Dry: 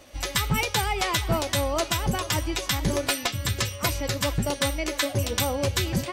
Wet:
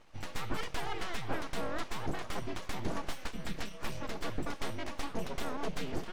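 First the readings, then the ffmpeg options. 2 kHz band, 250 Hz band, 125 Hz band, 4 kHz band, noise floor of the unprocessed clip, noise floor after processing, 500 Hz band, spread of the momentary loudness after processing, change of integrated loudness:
−12.5 dB, −10.5 dB, −16.0 dB, −16.5 dB, −39 dBFS, −46 dBFS, −12.5 dB, 4 LU, −14.0 dB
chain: -af "aeval=exprs='abs(val(0))':channel_layout=same,aemphasis=mode=reproduction:type=75kf,volume=-6.5dB"

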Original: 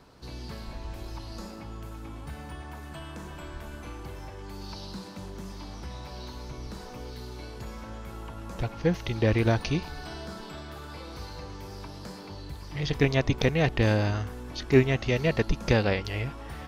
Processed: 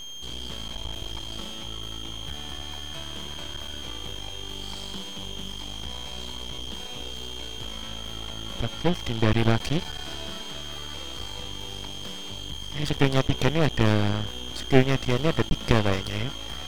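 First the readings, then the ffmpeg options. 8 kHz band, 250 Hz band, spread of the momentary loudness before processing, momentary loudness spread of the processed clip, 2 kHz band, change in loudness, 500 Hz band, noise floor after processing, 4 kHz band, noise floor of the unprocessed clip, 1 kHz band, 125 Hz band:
+8.5 dB, +2.0 dB, 17 LU, 12 LU, +0.5 dB, 0.0 dB, 0.0 dB, −37 dBFS, +10.0 dB, −42 dBFS, +3.5 dB, +1.0 dB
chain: -af "aeval=exprs='val(0)+0.0141*sin(2*PI*3200*n/s)':channel_layout=same,aeval=exprs='max(val(0),0)':channel_layout=same,volume=5dB"

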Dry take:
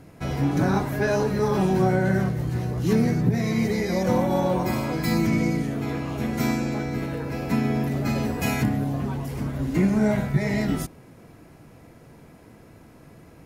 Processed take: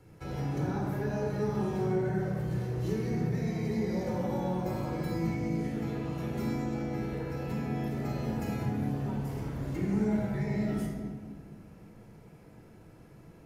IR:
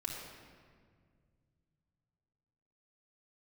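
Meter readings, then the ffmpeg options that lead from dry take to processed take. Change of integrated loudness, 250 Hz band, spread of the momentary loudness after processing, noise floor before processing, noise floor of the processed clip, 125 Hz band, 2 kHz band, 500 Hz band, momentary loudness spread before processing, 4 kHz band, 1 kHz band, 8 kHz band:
−8.5 dB, −8.5 dB, 6 LU, −50 dBFS, −54 dBFS, −7.5 dB, −12.5 dB, −8.5 dB, 8 LU, −13.0 dB, −10.0 dB, −13.5 dB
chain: -filter_complex "[0:a]acrossover=split=230|1100[link_01][link_02][link_03];[link_01]acompressor=threshold=-28dB:ratio=4[link_04];[link_02]acompressor=threshold=-27dB:ratio=4[link_05];[link_03]acompressor=threshold=-41dB:ratio=4[link_06];[link_04][link_05][link_06]amix=inputs=3:normalize=0[link_07];[1:a]atrim=start_sample=2205,asetrate=52920,aresample=44100[link_08];[link_07][link_08]afir=irnorm=-1:irlink=0,volume=-6dB"

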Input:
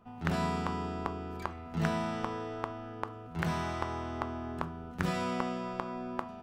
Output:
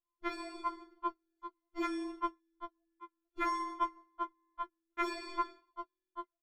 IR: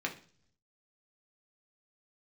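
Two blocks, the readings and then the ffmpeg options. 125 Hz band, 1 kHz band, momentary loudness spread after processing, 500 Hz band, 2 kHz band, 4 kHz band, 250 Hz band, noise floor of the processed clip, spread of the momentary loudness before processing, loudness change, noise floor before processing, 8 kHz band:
below −40 dB, −1.0 dB, 15 LU, −8.5 dB, −5.5 dB, −5.5 dB, −7.5 dB, below −85 dBFS, 8 LU, −4.0 dB, −46 dBFS, −7.5 dB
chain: -af "lowpass=frequency=2600:poles=1,agate=range=-43dB:threshold=-32dB:ratio=16:detection=peak,aecho=1:1:2:0.96,acompressor=threshold=-33dB:ratio=4,equalizer=frequency=430:width=1.5:gain=2.5,dynaudnorm=framelen=200:gausssize=9:maxgain=3.5dB,flanger=delay=1.7:depth=1.2:regen=-78:speed=1.7:shape=triangular,afftfilt=real='re*4*eq(mod(b,16),0)':imag='im*4*eq(mod(b,16),0)':win_size=2048:overlap=0.75,volume=10dB"

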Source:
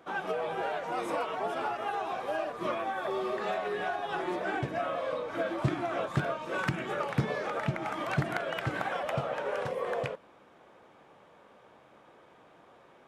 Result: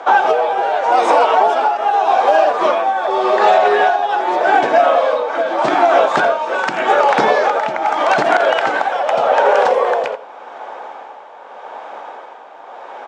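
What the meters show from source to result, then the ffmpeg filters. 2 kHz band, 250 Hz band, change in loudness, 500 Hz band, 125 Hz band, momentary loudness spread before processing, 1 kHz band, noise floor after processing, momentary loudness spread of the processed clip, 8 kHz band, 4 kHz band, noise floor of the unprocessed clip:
+17.0 dB, +10.0 dB, +19.0 dB, +19.0 dB, −6.5 dB, 2 LU, +21.5 dB, −37 dBFS, 19 LU, can't be measured, +16.5 dB, −59 dBFS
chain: -filter_complex "[0:a]equalizer=frequency=740:width=1.5:gain=6.5,acrossover=split=450|3000[link_01][link_02][link_03];[link_02]acompressor=threshold=-34dB:ratio=6[link_04];[link_01][link_04][link_03]amix=inputs=3:normalize=0,highpass=frequency=300:width=0.5412,highpass=frequency=300:width=1.3066,equalizer=frequency=330:width_type=q:width=4:gain=-7,equalizer=frequency=860:width_type=q:width=4:gain=7,equalizer=frequency=1500:width_type=q:width=4:gain=4,lowpass=frequency=7300:width=0.5412,lowpass=frequency=7300:width=1.3066,asplit=2[link_05][link_06];[link_06]aecho=0:1:84:0.188[link_07];[link_05][link_07]amix=inputs=2:normalize=0,tremolo=f=0.84:d=0.58,alimiter=level_in=22dB:limit=-1dB:release=50:level=0:latency=1,volume=-1dB"

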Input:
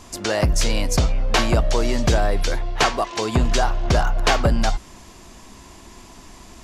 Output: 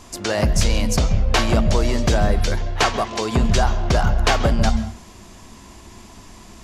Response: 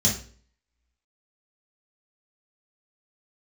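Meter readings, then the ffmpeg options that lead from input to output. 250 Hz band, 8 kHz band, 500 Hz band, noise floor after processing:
+2.5 dB, 0.0 dB, +0.5 dB, −43 dBFS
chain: -filter_complex "[0:a]asplit=2[link_01][link_02];[1:a]atrim=start_sample=2205,lowpass=3800,adelay=130[link_03];[link_02][link_03]afir=irnorm=-1:irlink=0,volume=-24dB[link_04];[link_01][link_04]amix=inputs=2:normalize=0"

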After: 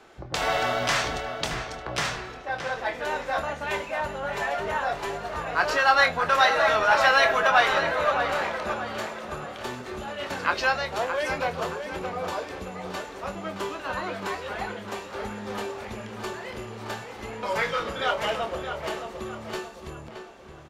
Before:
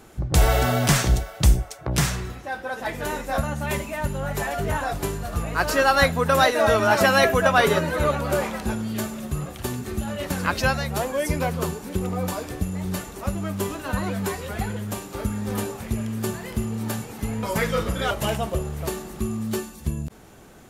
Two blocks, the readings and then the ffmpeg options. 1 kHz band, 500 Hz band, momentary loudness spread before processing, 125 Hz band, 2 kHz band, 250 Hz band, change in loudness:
+0.5 dB, −3.5 dB, 12 LU, −15.5 dB, +1.0 dB, −11.0 dB, −2.0 dB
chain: -filter_complex "[0:a]acrossover=split=360 5600:gain=0.178 1 0.1[link_01][link_02][link_03];[link_01][link_02][link_03]amix=inputs=3:normalize=0,acrossover=split=580[link_04][link_05];[link_04]aeval=exprs='0.0299*(abs(mod(val(0)/0.0299+3,4)-2)-1)':channel_layout=same[link_06];[link_06][link_05]amix=inputs=2:normalize=0,asplit=2[link_07][link_08];[link_08]adelay=25,volume=-9dB[link_09];[link_07][link_09]amix=inputs=2:normalize=0,asplit=2[link_10][link_11];[link_11]adelay=621,lowpass=frequency=3500:poles=1,volume=-8dB,asplit=2[link_12][link_13];[link_13]adelay=621,lowpass=frequency=3500:poles=1,volume=0.44,asplit=2[link_14][link_15];[link_15]adelay=621,lowpass=frequency=3500:poles=1,volume=0.44,asplit=2[link_16][link_17];[link_17]adelay=621,lowpass=frequency=3500:poles=1,volume=0.44,asplit=2[link_18][link_19];[link_19]adelay=621,lowpass=frequency=3500:poles=1,volume=0.44[link_20];[link_10][link_12][link_14][link_16][link_18][link_20]amix=inputs=6:normalize=0"

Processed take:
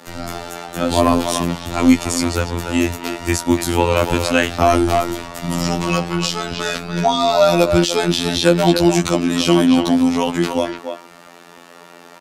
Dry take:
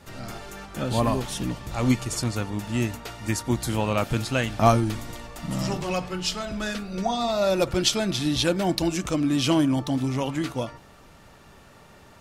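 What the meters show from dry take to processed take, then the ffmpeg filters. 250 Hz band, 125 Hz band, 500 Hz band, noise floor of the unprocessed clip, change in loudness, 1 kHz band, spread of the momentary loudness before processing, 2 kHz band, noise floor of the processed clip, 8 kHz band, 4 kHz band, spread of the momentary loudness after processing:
+9.0 dB, +4.5 dB, +9.5 dB, −51 dBFS, +8.5 dB, +9.0 dB, 11 LU, +9.5 dB, −42 dBFS, +7.5 dB, +7.5 dB, 11 LU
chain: -filter_complex "[0:a]asplit=2[link_01][link_02];[link_02]adelay=290,highpass=300,lowpass=3400,asoftclip=type=hard:threshold=-13.5dB,volume=-7dB[link_03];[link_01][link_03]amix=inputs=2:normalize=0,afftfilt=real='hypot(re,im)*cos(PI*b)':imag='0':win_size=2048:overlap=0.75,acrossover=split=190|1100|3200[link_04][link_05][link_06][link_07];[link_04]aeval=exprs='sgn(val(0))*max(abs(val(0))-0.00316,0)':channel_layout=same[link_08];[link_08][link_05][link_06][link_07]amix=inputs=4:normalize=0,alimiter=level_in=14dB:limit=-1dB:release=50:level=0:latency=1,volume=-1dB"

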